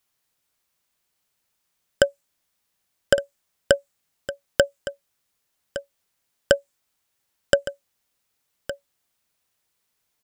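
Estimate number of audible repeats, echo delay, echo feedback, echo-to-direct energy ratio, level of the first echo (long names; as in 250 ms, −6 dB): 1, 1,163 ms, repeats not evenly spaced, −13.5 dB, −13.5 dB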